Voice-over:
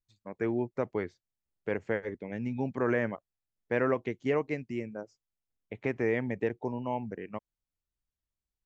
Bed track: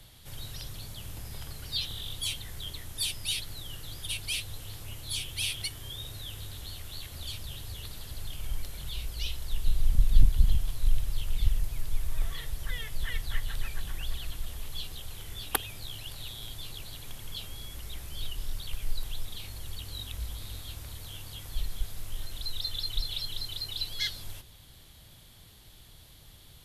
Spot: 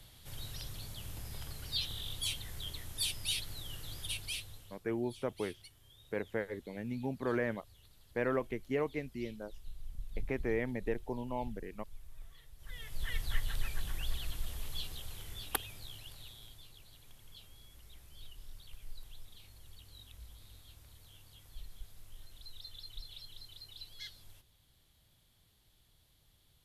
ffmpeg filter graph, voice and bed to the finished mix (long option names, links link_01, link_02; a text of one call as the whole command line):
ffmpeg -i stem1.wav -i stem2.wav -filter_complex "[0:a]adelay=4450,volume=-5dB[link_01];[1:a]volume=15dB,afade=type=out:start_time=4.01:duration=0.8:silence=0.133352,afade=type=in:start_time=12.57:duration=0.67:silence=0.11885,afade=type=out:start_time=14.71:duration=1.98:silence=0.223872[link_02];[link_01][link_02]amix=inputs=2:normalize=0" out.wav